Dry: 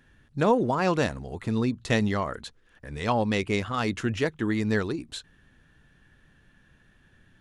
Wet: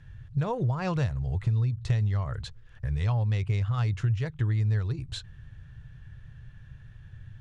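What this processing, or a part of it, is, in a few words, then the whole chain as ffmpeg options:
jukebox: -af "lowpass=7300,lowshelf=f=170:t=q:w=3:g=13,acompressor=threshold=0.0501:ratio=4"

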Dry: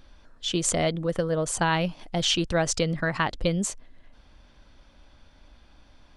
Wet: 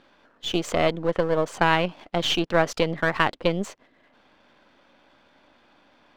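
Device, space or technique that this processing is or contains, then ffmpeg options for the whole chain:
crystal radio: -af "highpass=260,lowpass=3000,aeval=exprs='if(lt(val(0),0),0.447*val(0),val(0))':c=same,volume=2.11"

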